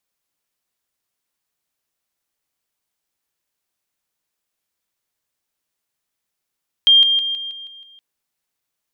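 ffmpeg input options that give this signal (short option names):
-f lavfi -i "aevalsrc='pow(10,(-7.5-6*floor(t/0.16))/20)*sin(2*PI*3200*t)':d=1.12:s=44100"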